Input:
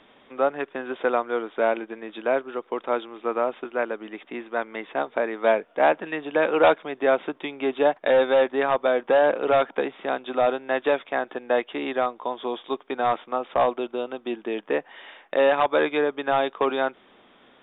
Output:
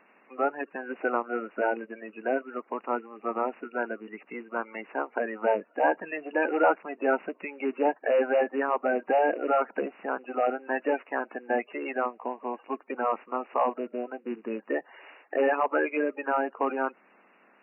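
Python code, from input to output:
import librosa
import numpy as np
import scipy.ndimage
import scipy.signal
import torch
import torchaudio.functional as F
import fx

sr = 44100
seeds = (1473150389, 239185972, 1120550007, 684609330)

y = fx.spec_quant(x, sr, step_db=30)
y = fx.brickwall_bandpass(y, sr, low_hz=170.0, high_hz=2900.0)
y = y * 10.0 ** (-4.0 / 20.0)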